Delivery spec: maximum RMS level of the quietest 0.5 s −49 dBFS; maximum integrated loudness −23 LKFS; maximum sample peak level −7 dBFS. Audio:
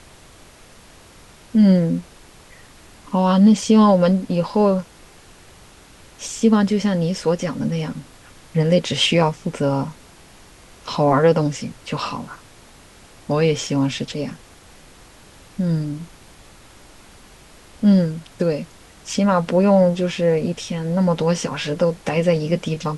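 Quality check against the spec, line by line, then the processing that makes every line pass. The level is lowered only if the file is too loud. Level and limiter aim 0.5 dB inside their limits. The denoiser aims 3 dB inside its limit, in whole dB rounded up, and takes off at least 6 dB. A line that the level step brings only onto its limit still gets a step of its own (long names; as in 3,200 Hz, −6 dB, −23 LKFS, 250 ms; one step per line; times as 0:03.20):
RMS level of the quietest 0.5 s −46 dBFS: out of spec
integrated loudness −19.0 LKFS: out of spec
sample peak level −5.0 dBFS: out of spec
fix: level −4.5 dB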